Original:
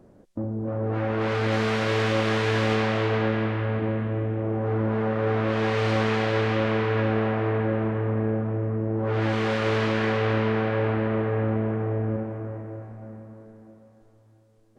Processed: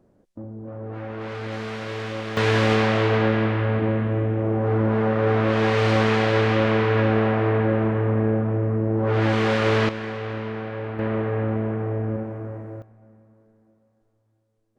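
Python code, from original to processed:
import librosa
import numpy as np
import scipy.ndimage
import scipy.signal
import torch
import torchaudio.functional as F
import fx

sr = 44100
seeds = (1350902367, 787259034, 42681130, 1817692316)

y = fx.gain(x, sr, db=fx.steps((0.0, -7.0), (2.37, 4.0), (9.89, -6.5), (10.99, 0.5), (12.82, -11.5)))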